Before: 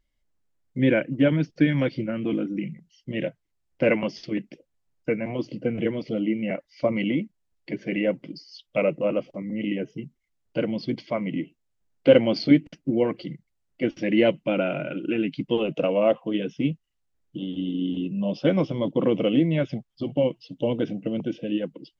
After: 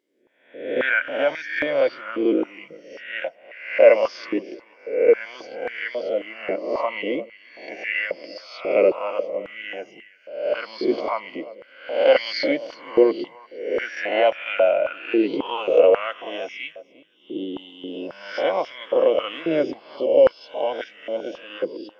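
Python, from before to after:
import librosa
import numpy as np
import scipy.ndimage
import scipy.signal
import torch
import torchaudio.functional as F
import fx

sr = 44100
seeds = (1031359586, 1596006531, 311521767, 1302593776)

y = fx.spec_swells(x, sr, rise_s=0.75)
y = fx.echo_feedback(y, sr, ms=350, feedback_pct=26, wet_db=-19.5)
y = fx.filter_held_highpass(y, sr, hz=3.7, low_hz=380.0, high_hz=1800.0)
y = y * 10.0 ** (-1.0 / 20.0)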